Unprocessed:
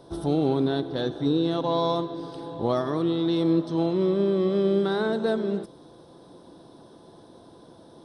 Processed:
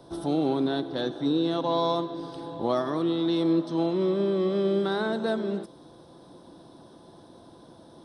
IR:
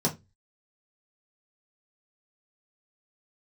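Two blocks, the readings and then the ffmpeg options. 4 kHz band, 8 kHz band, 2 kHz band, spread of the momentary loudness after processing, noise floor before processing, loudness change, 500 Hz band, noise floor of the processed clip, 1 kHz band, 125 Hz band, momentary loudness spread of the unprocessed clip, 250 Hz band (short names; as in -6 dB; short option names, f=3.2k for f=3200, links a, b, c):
0.0 dB, n/a, 0.0 dB, 7 LU, -51 dBFS, -2.0 dB, -2.0 dB, -52 dBFS, 0.0 dB, -4.5 dB, 7 LU, -1.5 dB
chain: -filter_complex "[0:a]equalizer=f=440:t=o:w=0.28:g=-5,acrossover=split=170|1500[a][b][c];[a]acompressor=threshold=-49dB:ratio=6[d];[d][b][c]amix=inputs=3:normalize=0"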